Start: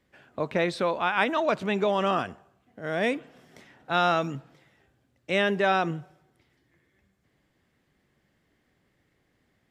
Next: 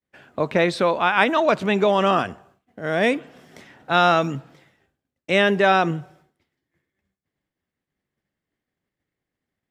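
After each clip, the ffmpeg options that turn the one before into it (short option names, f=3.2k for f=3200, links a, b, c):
-af "bandreject=f=60:t=h:w=6,bandreject=f=120:t=h:w=6,agate=range=-33dB:threshold=-57dB:ratio=3:detection=peak,volume=6.5dB"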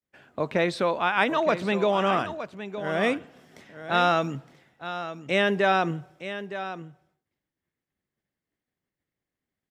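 -af "aecho=1:1:914:0.266,volume=-5dB"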